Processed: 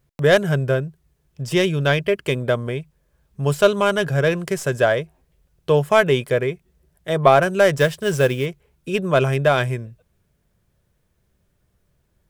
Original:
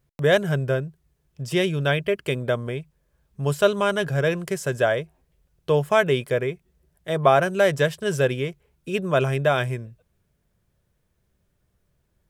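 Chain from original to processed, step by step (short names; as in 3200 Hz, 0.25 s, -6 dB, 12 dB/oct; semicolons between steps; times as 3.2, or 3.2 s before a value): tracing distortion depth 0.04 ms; 7.8–8.46 companded quantiser 6-bit; gain +3.5 dB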